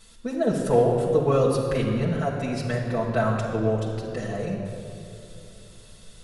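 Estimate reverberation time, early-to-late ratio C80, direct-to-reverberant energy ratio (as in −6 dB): 3.0 s, 4.0 dB, −6.5 dB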